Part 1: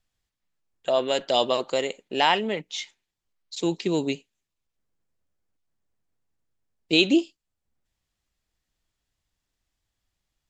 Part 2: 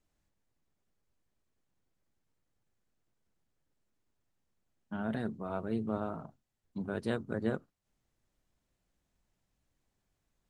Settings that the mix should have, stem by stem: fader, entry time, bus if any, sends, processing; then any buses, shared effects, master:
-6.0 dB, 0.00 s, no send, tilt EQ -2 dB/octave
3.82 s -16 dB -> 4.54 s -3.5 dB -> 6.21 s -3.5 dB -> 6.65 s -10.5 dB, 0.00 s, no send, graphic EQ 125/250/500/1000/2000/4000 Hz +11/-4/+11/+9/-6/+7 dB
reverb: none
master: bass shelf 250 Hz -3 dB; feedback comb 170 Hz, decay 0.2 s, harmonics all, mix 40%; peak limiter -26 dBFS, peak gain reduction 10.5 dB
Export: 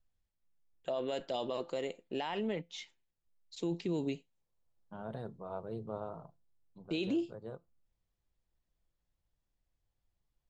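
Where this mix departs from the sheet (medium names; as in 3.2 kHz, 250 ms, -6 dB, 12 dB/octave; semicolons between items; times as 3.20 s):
stem 2 -16.0 dB -> -22.5 dB; master: missing bass shelf 250 Hz -3 dB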